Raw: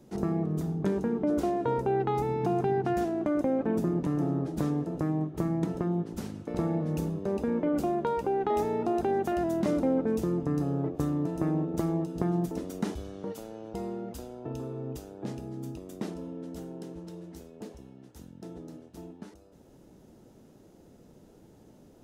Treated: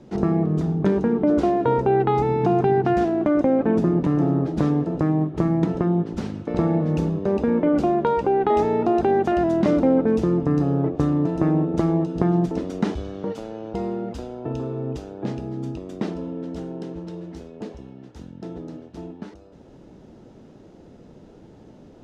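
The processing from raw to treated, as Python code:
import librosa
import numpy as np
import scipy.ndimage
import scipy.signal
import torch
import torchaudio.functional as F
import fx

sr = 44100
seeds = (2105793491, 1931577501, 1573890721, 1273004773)

y = scipy.signal.sosfilt(scipy.signal.butter(2, 4400.0, 'lowpass', fs=sr, output='sos'), x)
y = y * 10.0 ** (8.5 / 20.0)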